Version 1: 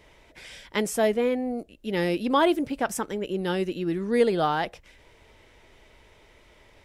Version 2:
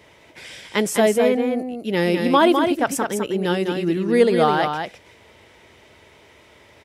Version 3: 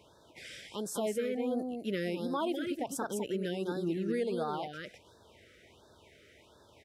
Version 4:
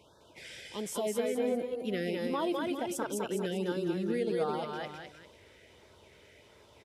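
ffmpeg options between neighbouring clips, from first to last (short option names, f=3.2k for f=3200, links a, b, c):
-af "highpass=f=76:w=0.5412,highpass=f=76:w=1.3066,aecho=1:1:205:0.531,volume=5.5dB"
-af "alimiter=limit=-15.5dB:level=0:latency=1:release=351,afftfilt=real='re*(1-between(b*sr/1024,850*pow(2500/850,0.5+0.5*sin(2*PI*1.4*pts/sr))/1.41,850*pow(2500/850,0.5+0.5*sin(2*PI*1.4*pts/sr))*1.41))':imag='im*(1-between(b*sr/1024,850*pow(2500/850,0.5+0.5*sin(2*PI*1.4*pts/sr))/1.41,850*pow(2500/850,0.5+0.5*sin(2*PI*1.4*pts/sr))*1.41))':win_size=1024:overlap=0.75,volume=-8.5dB"
-af "aresample=32000,aresample=44100,aecho=1:1:207|398:0.596|0.251"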